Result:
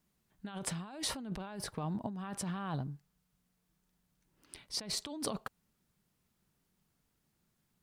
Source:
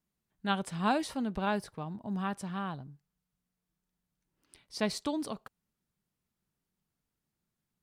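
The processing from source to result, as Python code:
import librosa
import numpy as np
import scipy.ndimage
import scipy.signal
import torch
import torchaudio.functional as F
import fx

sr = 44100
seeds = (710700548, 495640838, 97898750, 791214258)

y = fx.over_compress(x, sr, threshold_db=-41.0, ratio=-1.0)
y = F.gain(torch.from_numpy(y), 1.0).numpy()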